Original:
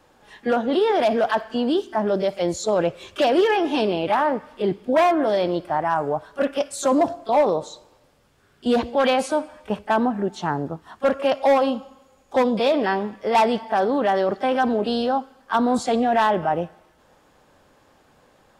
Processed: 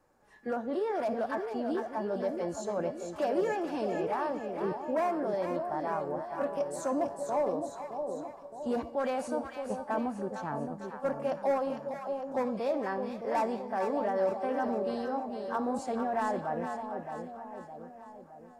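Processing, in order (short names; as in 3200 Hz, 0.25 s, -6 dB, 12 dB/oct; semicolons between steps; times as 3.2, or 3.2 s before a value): bell 3300 Hz -13.5 dB 0.82 oct; resonator 570 Hz, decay 0.55 s, mix 70%; split-band echo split 870 Hz, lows 0.616 s, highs 0.453 s, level -6 dB; gain -2 dB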